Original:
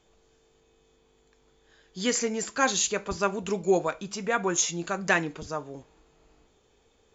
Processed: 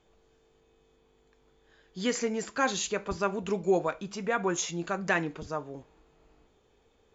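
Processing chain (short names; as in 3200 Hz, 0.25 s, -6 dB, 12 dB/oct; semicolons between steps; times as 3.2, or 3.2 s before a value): high shelf 5400 Hz -11.5 dB; in parallel at -3 dB: limiter -18 dBFS, peak gain reduction 9 dB; on the sum: gain -5.5 dB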